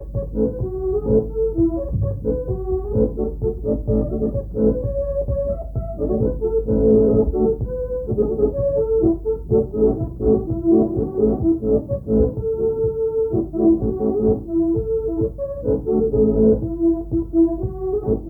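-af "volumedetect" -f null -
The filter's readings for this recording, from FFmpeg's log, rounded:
mean_volume: -19.2 dB
max_volume: -4.5 dB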